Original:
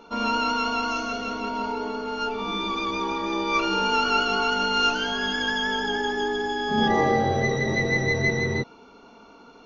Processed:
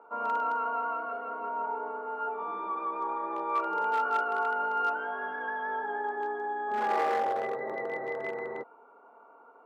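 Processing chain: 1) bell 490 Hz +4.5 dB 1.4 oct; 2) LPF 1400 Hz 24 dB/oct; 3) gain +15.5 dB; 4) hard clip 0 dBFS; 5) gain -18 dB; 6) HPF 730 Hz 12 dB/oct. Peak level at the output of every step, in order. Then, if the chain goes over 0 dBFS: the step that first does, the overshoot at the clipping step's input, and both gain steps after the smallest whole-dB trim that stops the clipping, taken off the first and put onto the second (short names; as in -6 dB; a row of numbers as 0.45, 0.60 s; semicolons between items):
-7.0, -7.5, +8.0, 0.0, -18.0, -17.0 dBFS; step 3, 8.0 dB; step 3 +7.5 dB, step 5 -10 dB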